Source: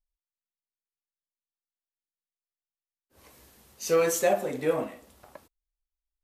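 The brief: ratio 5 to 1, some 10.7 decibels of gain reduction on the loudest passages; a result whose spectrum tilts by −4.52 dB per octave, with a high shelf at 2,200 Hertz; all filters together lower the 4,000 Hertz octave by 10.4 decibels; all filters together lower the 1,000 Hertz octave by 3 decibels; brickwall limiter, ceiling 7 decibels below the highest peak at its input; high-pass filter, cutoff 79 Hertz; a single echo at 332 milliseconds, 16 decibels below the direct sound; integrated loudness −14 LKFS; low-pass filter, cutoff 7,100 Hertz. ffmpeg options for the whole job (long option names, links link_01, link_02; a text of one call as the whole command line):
ffmpeg -i in.wav -af "highpass=79,lowpass=7100,equalizer=frequency=1000:width_type=o:gain=-3.5,highshelf=frequency=2200:gain=-5,equalizer=frequency=4000:width_type=o:gain=-8,acompressor=threshold=-32dB:ratio=5,alimiter=level_in=6.5dB:limit=-24dB:level=0:latency=1,volume=-6.5dB,aecho=1:1:332:0.158,volume=27dB" out.wav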